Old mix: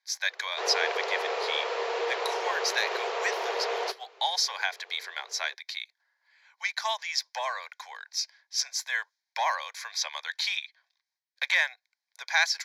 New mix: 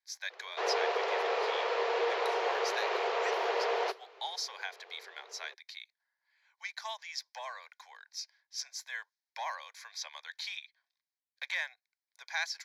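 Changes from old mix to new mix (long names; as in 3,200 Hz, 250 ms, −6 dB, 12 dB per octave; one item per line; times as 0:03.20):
speech −10.5 dB
background: add high-frequency loss of the air 85 metres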